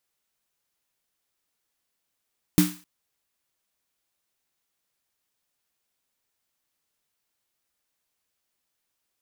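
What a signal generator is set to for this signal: snare drum length 0.26 s, tones 180 Hz, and 300 Hz, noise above 880 Hz, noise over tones -9 dB, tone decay 0.29 s, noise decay 0.41 s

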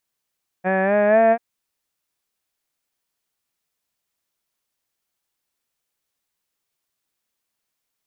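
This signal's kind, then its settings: formant-synthesis vowel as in had, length 0.74 s, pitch 182 Hz, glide +4.5 st, vibrato 4.1 Hz, vibrato depth 0.35 st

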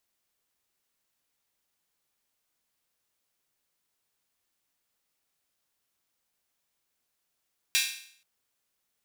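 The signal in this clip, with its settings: open hi-hat length 0.48 s, high-pass 2.5 kHz, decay 0.59 s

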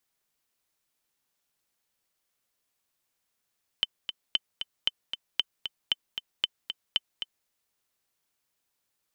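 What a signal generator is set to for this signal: metronome 230 bpm, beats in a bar 2, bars 7, 3.06 kHz, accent 8.5 dB -10.5 dBFS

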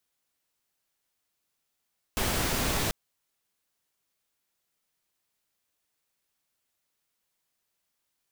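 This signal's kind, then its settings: noise pink, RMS -28 dBFS 0.74 s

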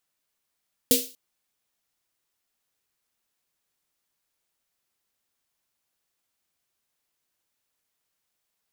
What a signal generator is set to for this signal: snare drum length 0.24 s, tones 260 Hz, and 480 Hz, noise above 2.9 kHz, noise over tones 2.5 dB, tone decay 0.27 s, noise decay 0.37 s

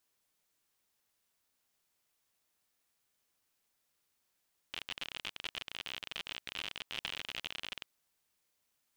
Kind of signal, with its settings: random clicks 55 per s -23.5 dBFS 3.12 s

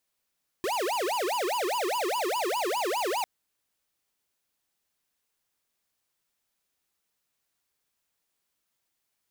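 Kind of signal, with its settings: siren wail 348–996 Hz 4.9 per s square -28.5 dBFS 2.60 s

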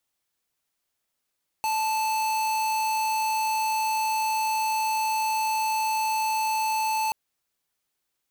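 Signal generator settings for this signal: tone square 876 Hz -25.5 dBFS 5.48 s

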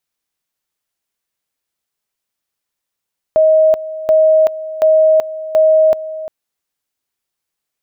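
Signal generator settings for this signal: two-level tone 630 Hz -6.5 dBFS, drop 15.5 dB, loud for 0.38 s, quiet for 0.35 s, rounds 4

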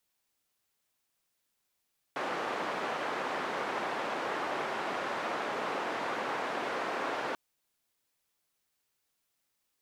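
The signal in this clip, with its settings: noise band 330–1200 Hz, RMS -34.5 dBFS 5.19 s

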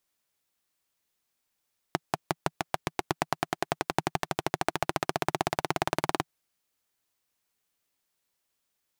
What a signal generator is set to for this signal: single-cylinder engine model, changing speed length 4.30 s, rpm 600, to 2300, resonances 160/350/700 Hz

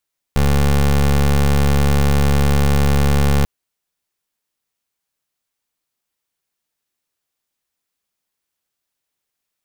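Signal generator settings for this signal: pulse 70.8 Hz, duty 22% -13.5 dBFS 3.09 s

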